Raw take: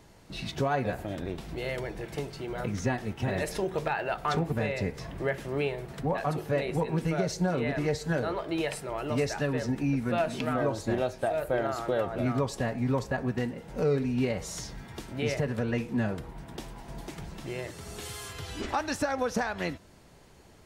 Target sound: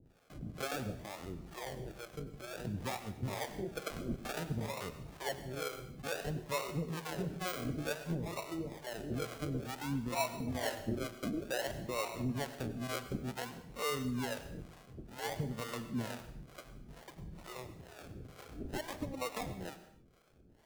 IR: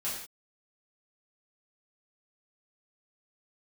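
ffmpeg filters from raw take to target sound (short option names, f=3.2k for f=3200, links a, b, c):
-filter_complex "[0:a]acrusher=samples=38:mix=1:aa=0.000001:lfo=1:lforange=22.8:lforate=0.56,acrossover=split=450[a][b];[a]aeval=exprs='val(0)*(1-1/2+1/2*cos(2*PI*2.2*n/s))':c=same[c];[b]aeval=exprs='val(0)*(1-1/2-1/2*cos(2*PI*2.2*n/s))':c=same[d];[c][d]amix=inputs=2:normalize=0,asplit=2[e][f];[1:a]atrim=start_sample=2205,adelay=90[g];[f][g]afir=irnorm=-1:irlink=0,volume=-16dB[h];[e][h]amix=inputs=2:normalize=0,volume=-5dB"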